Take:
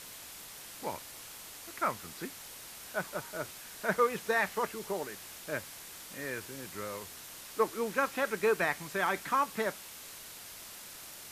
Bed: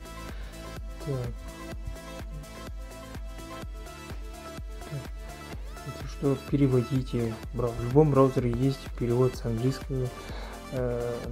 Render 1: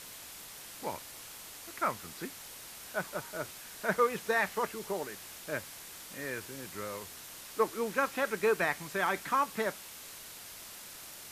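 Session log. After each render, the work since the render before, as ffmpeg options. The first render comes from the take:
-af anull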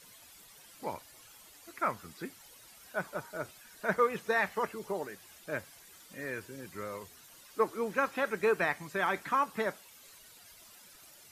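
-af "afftdn=nr=12:nf=-48"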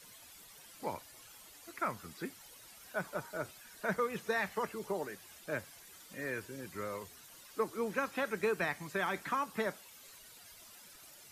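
-filter_complex "[0:a]acrossover=split=270|3000[a][b][c];[b]acompressor=threshold=-33dB:ratio=3[d];[a][d][c]amix=inputs=3:normalize=0"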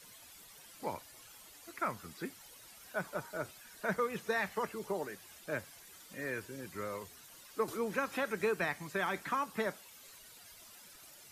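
-filter_complex "[0:a]asettb=1/sr,asplit=3[a][b][c];[a]atrim=end=7.684[d];[b]atrim=start=7.68:end=8.48,asetpts=PTS-STARTPTS,afade=t=in:d=0.004:c=qsin,afade=t=out:st=0.796:d=0.004:c=qsin,acompressor=mode=upward:threshold=-35dB:ratio=2.5:attack=3.2:release=140:knee=2.83:detection=peak[e];[c]atrim=start=8.476[f];[d][e]acrossfade=d=0.004:c1=hsin:c2=qsin[g];[g][f]acrossfade=d=0.004:c1=qsin:c2=hsin"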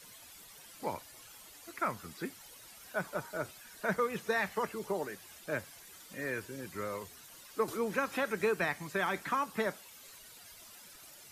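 -af "volume=2dB"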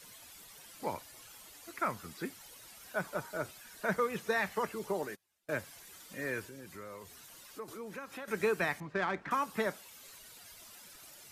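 -filter_complex "[0:a]asettb=1/sr,asplit=3[a][b][c];[a]atrim=end=5.024[d];[b]atrim=start=5.02:end=5.54,asetpts=PTS-STARTPTS,afade=t=in:d=0.004:c=qsin,afade=t=out:st=0.516:d=0.004:c=qsin,agate=range=-28dB:threshold=-45dB:ratio=16:release=100:detection=peak[e];[c]atrim=start=5.536[f];[d][e]acrossfade=d=0.004:c1=hsin:c2=qsin[g];[g][f]acrossfade=d=0.004:c1=qsin:c2=hsin,asettb=1/sr,asplit=3[h][i][j];[h]atrim=end=6.484[k];[i]atrim=start=6.48:end=8.28,asetpts=PTS-STARTPTS,afade=t=in:d=0.004:c=qsin,afade=t=out:st=1.796:d=0.004:c=qsin,acompressor=threshold=-49dB:ratio=2:attack=3.2:release=140:knee=1:detection=peak[l];[j]atrim=start=8.276[m];[k][l]acrossfade=d=0.004:c1=hsin:c2=qsin[n];[n][m]acrossfade=d=0.004:c1=qsin:c2=hsin,asettb=1/sr,asplit=3[o][p][q];[o]atrim=end=8.804[r];[p]atrim=start=8.8:end=9.31,asetpts=PTS-STARTPTS,afade=t=in:d=0.004:c=qsin,afade=t=out:st=0.506:d=0.004:c=qsin,adynamicsmooth=sensitivity=2.5:basefreq=1.8k[s];[q]atrim=start=9.306[t];[r][s]acrossfade=d=0.004:c1=hsin:c2=qsin[u];[u][t]acrossfade=d=0.004:c1=qsin:c2=hsin"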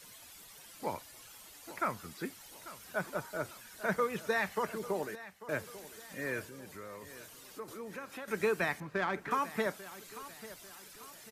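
-af "aecho=1:1:843|1686|2529|3372:0.158|0.0697|0.0307|0.0135"

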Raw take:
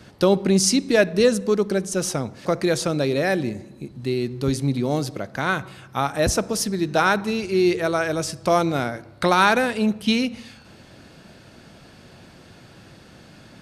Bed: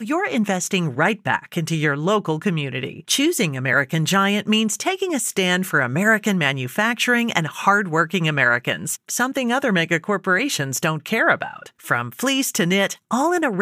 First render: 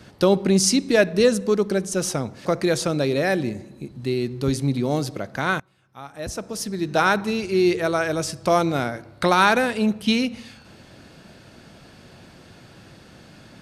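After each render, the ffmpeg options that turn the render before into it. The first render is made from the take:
-filter_complex "[0:a]asplit=2[a][b];[a]atrim=end=5.6,asetpts=PTS-STARTPTS,afade=t=out:st=5.596:d=0.004:c=hsin:silence=0.0794328[c];[b]atrim=start=5.6,asetpts=PTS-STARTPTS,afade=t=in:d=1.41:c=qua:silence=0.0794328[d];[c][d]concat=n=2:v=0:a=1"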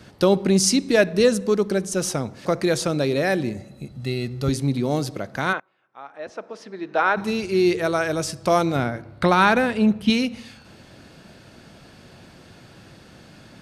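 -filter_complex "[0:a]asettb=1/sr,asplit=3[a][b][c];[a]atrim=end=3.574[d];[b]atrim=start=3.57:end=4.49,asetpts=PTS-STARTPTS,afade=t=in:d=0.004:c=qsin,afade=t=out:st=0.916:d=0.004:c=qsin,aecho=1:1:1.5:0.52,atrim=end_sample=40572[e];[c]atrim=start=4.486[f];[d][e]acrossfade=d=0.004:c1=hsin:c2=qsin[g];[g][f]acrossfade=d=0.004:c1=qsin:c2=hsin,asplit=3[h][i][j];[h]afade=t=out:st=5.52:d=0.02[k];[i]highpass=420,lowpass=2.3k,afade=t=in:st=5.52:d=0.02,afade=t=out:st=7.16:d=0.02[l];[j]afade=t=in:st=7.16:d=0.02[m];[k][l][m]amix=inputs=3:normalize=0,asettb=1/sr,asplit=3[n][o][p];[n]atrim=end=8.764[q];[o]atrim=start=8.76:end=10.1,asetpts=PTS-STARTPTS,afade=t=in:d=0.004:c=qsin,afade=t=out:st=1.336:d=0.004:c=qsin,bass=f=250:g=5,treble=f=4k:g=-7[r];[p]atrim=start=10.096[s];[q][r]acrossfade=d=0.004:c1=hsin:c2=qsin[t];[t][s]acrossfade=d=0.004:c1=qsin:c2=hsin"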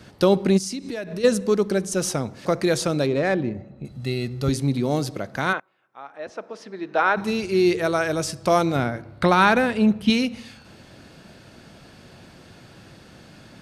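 -filter_complex "[0:a]asplit=3[a][b][c];[a]afade=t=out:st=0.57:d=0.02[d];[b]acompressor=threshold=-27dB:ratio=8:attack=3.2:release=140:knee=1:detection=peak,afade=t=in:st=0.57:d=0.02,afade=t=out:st=1.23:d=0.02[e];[c]afade=t=in:st=1.23:d=0.02[f];[d][e][f]amix=inputs=3:normalize=0,asettb=1/sr,asplit=3[g][h][i];[g]atrim=end=3.064[j];[h]atrim=start=3.06:end=3.85,asetpts=PTS-STARTPTS,afade=t=in:d=0.004:c=qsin,afade=t=out:st=0.786:d=0.004:c=qsin,adynamicsmooth=sensitivity=1:basefreq=1.9k[k];[i]atrim=start=3.846[l];[j][k]acrossfade=d=0.004:c1=hsin:c2=qsin[m];[m][l]acrossfade=d=0.004:c1=qsin:c2=hsin"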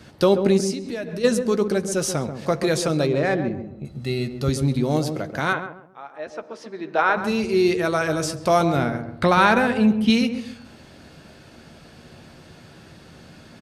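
-filter_complex "[0:a]asplit=2[a][b];[b]adelay=13,volume=-11dB[c];[a][c]amix=inputs=2:normalize=0,asplit=2[d][e];[e]adelay=135,lowpass=f=870:p=1,volume=-7dB,asplit=2[f][g];[g]adelay=135,lowpass=f=870:p=1,volume=0.36,asplit=2[h][i];[i]adelay=135,lowpass=f=870:p=1,volume=0.36,asplit=2[j][k];[k]adelay=135,lowpass=f=870:p=1,volume=0.36[l];[f][h][j][l]amix=inputs=4:normalize=0[m];[d][m]amix=inputs=2:normalize=0"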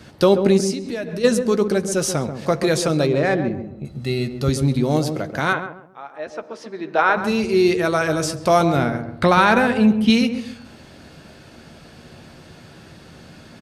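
-af "volume=2.5dB,alimiter=limit=-3dB:level=0:latency=1"

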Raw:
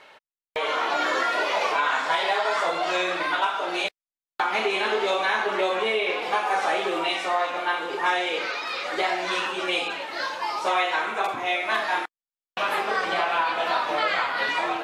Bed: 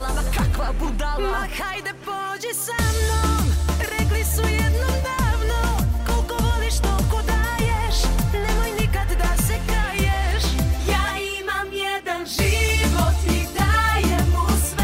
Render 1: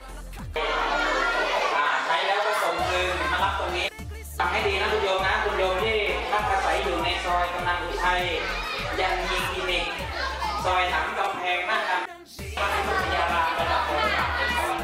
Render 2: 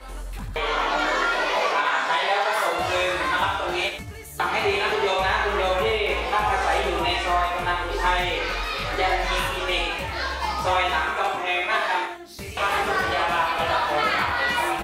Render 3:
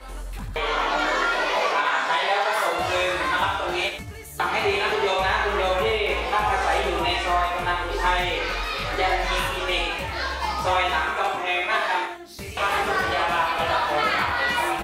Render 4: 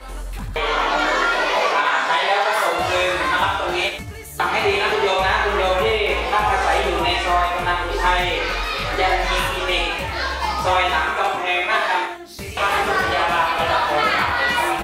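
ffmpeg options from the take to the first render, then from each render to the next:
-filter_complex "[1:a]volume=-16.5dB[a];[0:a][a]amix=inputs=2:normalize=0"
-filter_complex "[0:a]asplit=2[a][b];[b]adelay=20,volume=-5dB[c];[a][c]amix=inputs=2:normalize=0,asplit=2[d][e];[e]aecho=0:1:90:0.355[f];[d][f]amix=inputs=2:normalize=0"
-af anull
-af "volume=4dB"

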